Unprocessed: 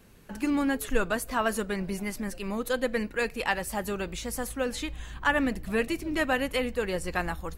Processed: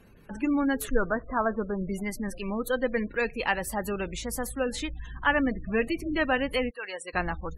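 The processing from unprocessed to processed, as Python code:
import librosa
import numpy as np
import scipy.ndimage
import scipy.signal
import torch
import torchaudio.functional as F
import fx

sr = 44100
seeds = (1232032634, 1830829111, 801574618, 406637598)

y = fx.lowpass(x, sr, hz=fx.line((0.93, 2200.0), (1.88, 1200.0)), slope=24, at=(0.93, 1.88), fade=0.02)
y = fx.spec_gate(y, sr, threshold_db=-25, keep='strong')
y = fx.highpass(y, sr, hz=fx.line((6.69, 1300.0), (7.13, 550.0)), slope=12, at=(6.69, 7.13), fade=0.02)
y = y * librosa.db_to_amplitude(1.0)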